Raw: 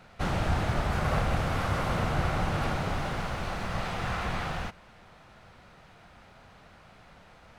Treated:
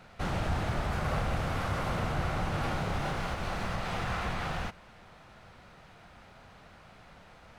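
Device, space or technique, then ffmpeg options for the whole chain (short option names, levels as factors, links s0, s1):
clipper into limiter: -filter_complex "[0:a]asettb=1/sr,asplit=3[s0][s1][s2];[s0]atrim=end=2.614[s3];[s1]atrim=start=2.61:end=3.35,asetpts=PTS-STARTPTS,afade=t=in:d=0.004:c=qsin,afade=t=out:st=0.736:d=0.004:c=qsin,asplit=2[s4][s5];[s5]adelay=29,volume=0.562[s6];[s4][s6]amix=inputs=2:normalize=0,atrim=end_sample=32634[s7];[s2]atrim=start=3.346[s8];[s3][s7]acrossfade=d=0.004:c1=hsin:c2=qsin[s9];[s9][s8]acrossfade=d=0.004:c1=qsin:c2=hsin,asoftclip=type=hard:threshold=0.106,alimiter=limit=0.0708:level=0:latency=1:release=154"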